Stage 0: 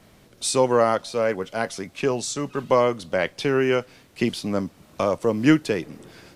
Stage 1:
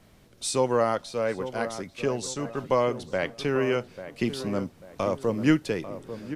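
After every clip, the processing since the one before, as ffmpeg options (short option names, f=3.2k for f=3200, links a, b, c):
-filter_complex "[0:a]lowshelf=f=87:g=7,asplit=2[a][b];[b]adelay=843,lowpass=f=1.4k:p=1,volume=-11dB,asplit=2[c][d];[d]adelay=843,lowpass=f=1.4k:p=1,volume=0.41,asplit=2[e][f];[f]adelay=843,lowpass=f=1.4k:p=1,volume=0.41,asplit=2[g][h];[h]adelay=843,lowpass=f=1.4k:p=1,volume=0.41[i];[a][c][e][g][i]amix=inputs=5:normalize=0,volume=-5dB"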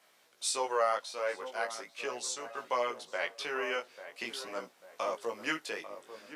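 -af "highpass=760,flanger=delay=16:depth=3.9:speed=0.41,volume=1dB"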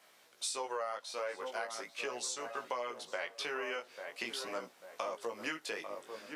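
-af "acompressor=threshold=-37dB:ratio=6,volume=2dB"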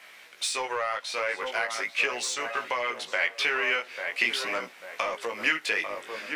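-filter_complex "[0:a]asplit=2[a][b];[b]asoftclip=type=hard:threshold=-40dB,volume=-5.5dB[c];[a][c]amix=inputs=2:normalize=0,equalizer=f=2.2k:w=1.1:g=12.5,volume=3dB"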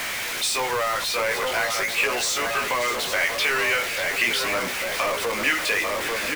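-af "aeval=exprs='val(0)+0.5*0.0668*sgn(val(0))':c=same,aecho=1:1:586:0.251"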